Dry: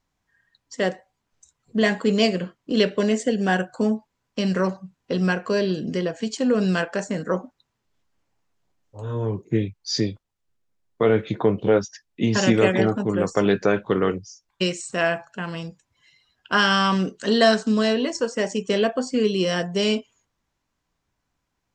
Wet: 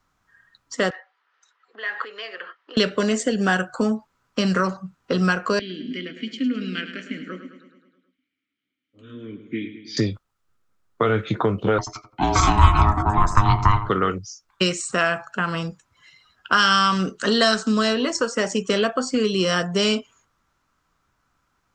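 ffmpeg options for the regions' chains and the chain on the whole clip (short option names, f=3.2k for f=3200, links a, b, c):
-filter_complex "[0:a]asettb=1/sr,asplit=3[a][b][c];[a]atrim=end=0.904[d];[b]atrim=start=0.9:end=2.77,asetpts=PTS-STARTPTS,afade=t=in:d=0.004:c=qsin,afade=t=out:st=1.866:d=0.004:c=qsin,acompressor=threshold=-33dB:ratio=8:attack=3.2:release=140:knee=1:detection=peak,highpass=f=480:w=0.5412,highpass=f=480:w=1.3066,equalizer=f=620:t=q:w=4:g=-7,equalizer=f=1.8k:t=q:w=4:g=10,equalizer=f=3k:t=q:w=4:g=4,lowpass=f=4.5k:w=0.5412,lowpass=f=4.5k:w=1.3066[e];[c]atrim=start=2.766[f];[d][e]acrossfade=d=0.004:c1=hsin:c2=qsin[g];[g][f]acrossfade=d=0.004:c1=qsin:c2=hsin,asettb=1/sr,asplit=3[h][i][j];[h]atrim=end=5.594[k];[i]atrim=start=5.59:end=9.97,asetpts=PTS-STARTPTS,afade=t=in:d=0.004:c=qsin,afade=t=out:st=4.376:d=0.004:c=qsin,asplit=3[l][m][n];[l]bandpass=f=270:t=q:w=8,volume=0dB[o];[m]bandpass=f=2.29k:t=q:w=8,volume=-6dB[p];[n]bandpass=f=3.01k:t=q:w=8,volume=-9dB[q];[o][p][q]amix=inputs=3:normalize=0,equalizer=f=2.9k:w=0.58:g=8,aecho=1:1:106|212|318|424|530|636|742:0.282|0.169|0.101|0.0609|0.0365|0.0219|0.0131,atrim=end_sample=193158[r];[j]atrim=start=9.966[s];[k][r]acrossfade=d=0.004:c1=hsin:c2=qsin[t];[t][s]acrossfade=d=0.004:c1=qsin:c2=hsin,asettb=1/sr,asplit=3[u][v][w];[u]atrim=end=11.784[x];[v]atrim=start=11.78:end=13.89,asetpts=PTS-STARTPTS,afade=t=in:d=0.004:c=qsin,afade=t=out:st=2.106:d=0.004:c=qsin,equalizer=f=540:w=1.2:g=8,aeval=exprs='val(0)*sin(2*PI*520*n/s)':c=same,asplit=2[y][z];[z]adelay=86,lowpass=f=1k:p=1,volume=-10.5dB,asplit=2[aa][ab];[ab]adelay=86,lowpass=f=1k:p=1,volume=0.4,asplit=2[ac][ad];[ad]adelay=86,lowpass=f=1k:p=1,volume=0.4,asplit=2[ae][af];[af]adelay=86,lowpass=f=1k:p=1,volume=0.4[ag];[y][aa][ac][ae][ag]amix=inputs=5:normalize=0,atrim=end_sample=93051[ah];[w]atrim=start=13.886[ai];[x][ah]acrossfade=d=0.004:c1=hsin:c2=qsin[aj];[aj][ai]acrossfade=d=0.004:c1=qsin:c2=hsin,equalizer=f=1.3k:t=o:w=0.47:g=13,acrossover=split=120|3000[ak][al][am];[al]acompressor=threshold=-25dB:ratio=3[an];[ak][an][am]amix=inputs=3:normalize=0,volume=5dB"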